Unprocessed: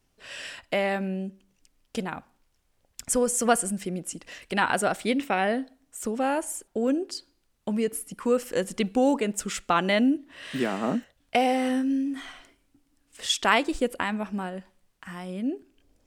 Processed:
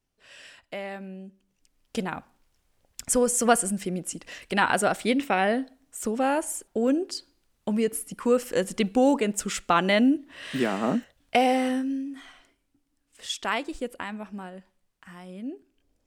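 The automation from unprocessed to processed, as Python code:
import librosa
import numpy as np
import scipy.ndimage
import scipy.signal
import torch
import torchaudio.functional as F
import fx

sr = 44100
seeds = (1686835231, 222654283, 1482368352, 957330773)

y = fx.gain(x, sr, db=fx.line((1.25, -9.5), (2.0, 1.5), (11.57, 1.5), (12.11, -6.5)))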